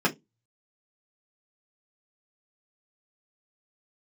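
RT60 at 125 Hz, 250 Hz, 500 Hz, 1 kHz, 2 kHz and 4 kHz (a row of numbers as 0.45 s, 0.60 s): 0.25 s, 0.25 s, 0.20 s, 0.15 s, 0.15 s, 0.15 s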